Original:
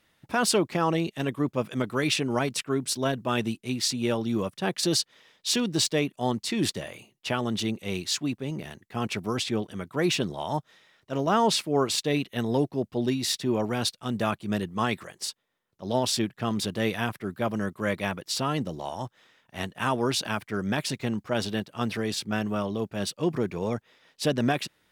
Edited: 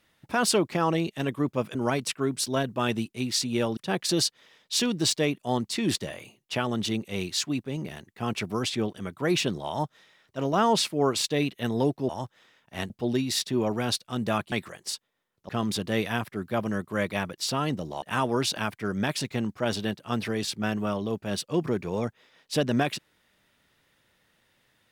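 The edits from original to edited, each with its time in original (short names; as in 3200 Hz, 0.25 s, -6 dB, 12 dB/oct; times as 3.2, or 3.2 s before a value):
1.75–2.24 cut
4.26–4.51 cut
14.45–14.87 cut
15.84–16.37 cut
18.9–19.71 move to 12.83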